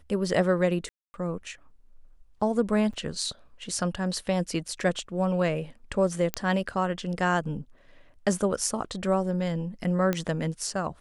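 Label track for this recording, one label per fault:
0.890000	1.140000	gap 0.25 s
2.930000	2.940000	gap 5.5 ms
6.340000	6.340000	pop -10 dBFS
10.130000	10.130000	pop -13 dBFS

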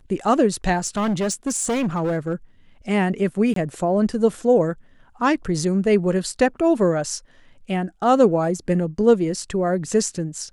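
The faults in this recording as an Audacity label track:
0.780000	2.330000	clipped -18.5 dBFS
3.540000	3.560000	gap 23 ms

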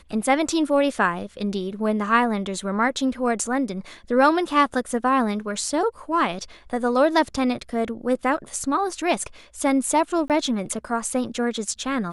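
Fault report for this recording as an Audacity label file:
10.280000	10.300000	gap 18 ms

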